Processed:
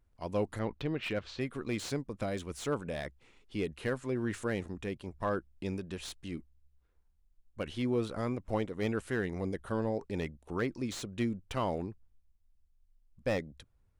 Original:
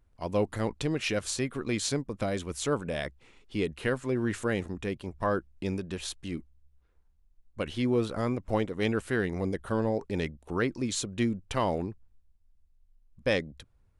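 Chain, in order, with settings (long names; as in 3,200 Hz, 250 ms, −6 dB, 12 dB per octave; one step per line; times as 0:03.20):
0:00.59–0:01.41: low-pass filter 3,900 Hz 24 dB per octave
slew-rate limiting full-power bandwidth 91 Hz
level −4.5 dB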